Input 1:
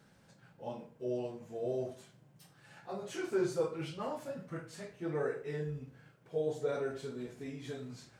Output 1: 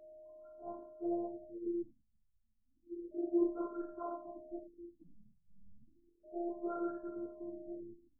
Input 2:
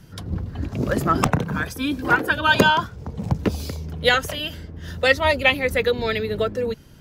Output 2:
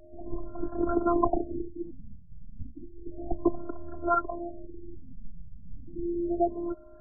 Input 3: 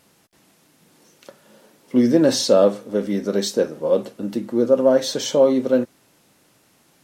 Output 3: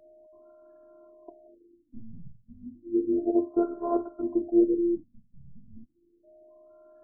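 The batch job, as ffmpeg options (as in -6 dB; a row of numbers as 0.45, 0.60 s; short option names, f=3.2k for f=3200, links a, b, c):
-af "afftfilt=real='hypot(re,im)*cos(PI*b)':imag='0':win_size=512:overlap=0.75,aeval=exprs='val(0)+0.002*sin(2*PI*620*n/s)':c=same,afftfilt=real='re*lt(b*sr/1024,210*pow(1700/210,0.5+0.5*sin(2*PI*0.32*pts/sr)))':imag='im*lt(b*sr/1024,210*pow(1700/210,0.5+0.5*sin(2*PI*0.32*pts/sr)))':win_size=1024:overlap=0.75,volume=1.5dB"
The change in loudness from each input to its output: -2.5, -10.0, -8.0 LU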